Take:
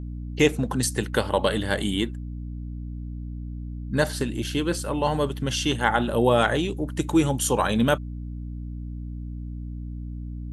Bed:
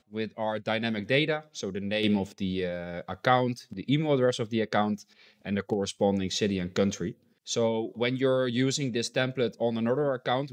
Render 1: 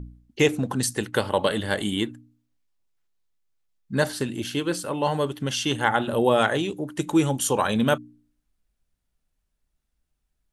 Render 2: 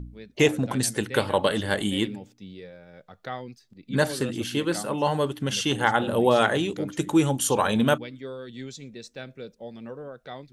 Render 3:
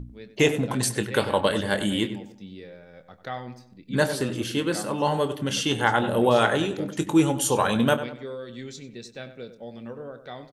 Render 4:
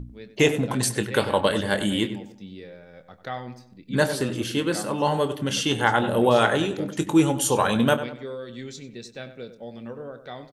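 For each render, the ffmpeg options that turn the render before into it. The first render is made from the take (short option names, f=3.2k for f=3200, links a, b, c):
-af "bandreject=f=60:t=h:w=4,bandreject=f=120:t=h:w=4,bandreject=f=180:t=h:w=4,bandreject=f=240:t=h:w=4,bandreject=f=300:t=h:w=4"
-filter_complex "[1:a]volume=-12dB[a];[0:a][a]amix=inputs=2:normalize=0"
-filter_complex "[0:a]asplit=2[a][b];[b]adelay=25,volume=-11.5dB[c];[a][c]amix=inputs=2:normalize=0,asplit=2[d][e];[e]adelay=96,lowpass=f=2.7k:p=1,volume=-11.5dB,asplit=2[f][g];[g]adelay=96,lowpass=f=2.7k:p=1,volume=0.4,asplit=2[h][i];[i]adelay=96,lowpass=f=2.7k:p=1,volume=0.4,asplit=2[j][k];[k]adelay=96,lowpass=f=2.7k:p=1,volume=0.4[l];[f][h][j][l]amix=inputs=4:normalize=0[m];[d][m]amix=inputs=2:normalize=0"
-af "volume=1dB"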